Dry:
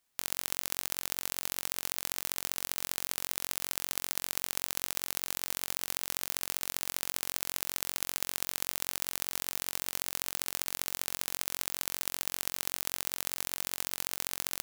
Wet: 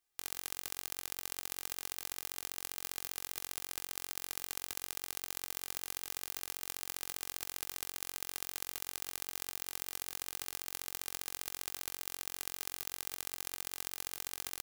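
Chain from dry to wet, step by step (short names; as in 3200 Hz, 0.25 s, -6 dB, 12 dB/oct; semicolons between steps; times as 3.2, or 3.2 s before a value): comb 2.5 ms, depth 66%; gain -8 dB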